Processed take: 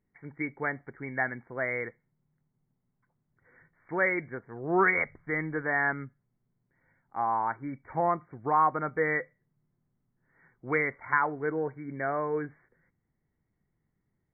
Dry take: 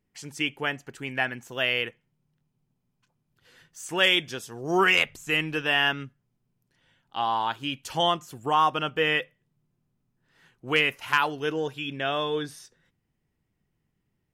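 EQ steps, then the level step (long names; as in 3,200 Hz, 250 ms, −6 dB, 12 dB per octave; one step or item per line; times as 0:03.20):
linear-phase brick-wall low-pass 2,300 Hz
−2.0 dB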